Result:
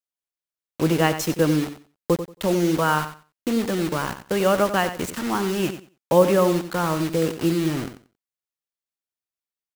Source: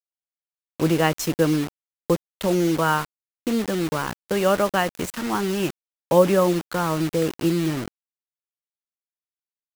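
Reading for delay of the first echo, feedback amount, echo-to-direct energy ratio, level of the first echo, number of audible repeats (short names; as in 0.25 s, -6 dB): 91 ms, 19%, -11.0 dB, -11.0 dB, 2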